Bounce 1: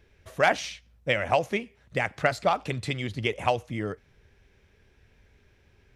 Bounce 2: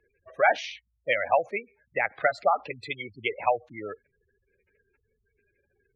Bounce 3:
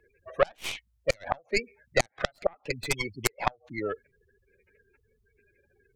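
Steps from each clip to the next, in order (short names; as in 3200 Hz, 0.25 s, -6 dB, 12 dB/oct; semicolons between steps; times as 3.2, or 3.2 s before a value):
spectral gate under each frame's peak -15 dB strong; three-band isolator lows -19 dB, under 420 Hz, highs -13 dB, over 4100 Hz; gain +2.5 dB
tracing distortion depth 0.33 ms; flipped gate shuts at -15 dBFS, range -34 dB; gain +5 dB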